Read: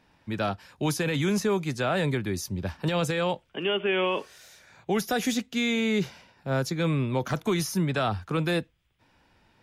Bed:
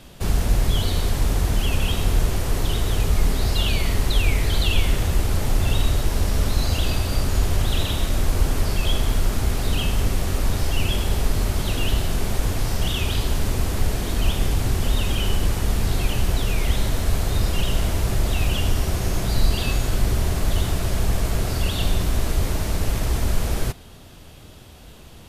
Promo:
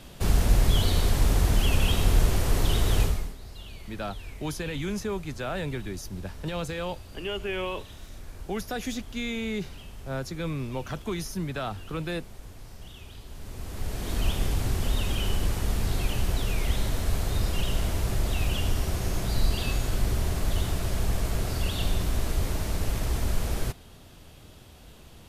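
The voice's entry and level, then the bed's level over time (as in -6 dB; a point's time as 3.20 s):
3.60 s, -6.0 dB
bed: 3.03 s -1.5 dB
3.37 s -22 dB
13.25 s -22 dB
14.14 s -5.5 dB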